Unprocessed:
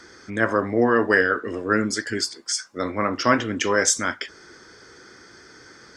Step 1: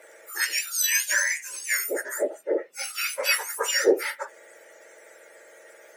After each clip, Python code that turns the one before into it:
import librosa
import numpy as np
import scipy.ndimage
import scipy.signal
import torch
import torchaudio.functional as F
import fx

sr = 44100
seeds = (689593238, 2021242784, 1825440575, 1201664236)

y = fx.octave_mirror(x, sr, pivot_hz=1700.0)
y = fx.highpass(y, sr, hz=530.0, slope=6)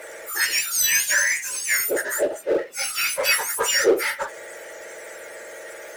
y = fx.power_curve(x, sr, exponent=0.7)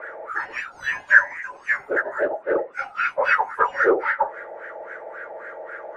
y = fx.filter_lfo_lowpass(x, sr, shape='sine', hz=3.7, low_hz=760.0, high_hz=1600.0, q=5.3)
y = y * librosa.db_to_amplitude(-2.0)